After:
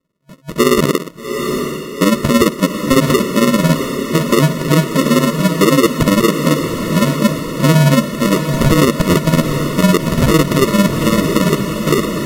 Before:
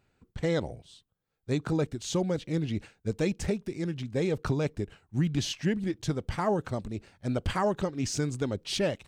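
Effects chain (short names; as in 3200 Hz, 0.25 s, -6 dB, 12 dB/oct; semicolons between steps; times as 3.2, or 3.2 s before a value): ending faded out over 1.07 s; gate with hold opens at -57 dBFS; in parallel at -1 dB: negative-ratio compressor -34 dBFS, ratio -1; on the sum: AM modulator 24 Hz, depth 55%; FFT band-pass 190–1400 Hz; sample-and-hold 41×; diffused feedback echo 0.582 s, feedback 58%, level -9 dB; speed mistake 45 rpm record played at 33 rpm; maximiser +23 dB; gain -1.5 dB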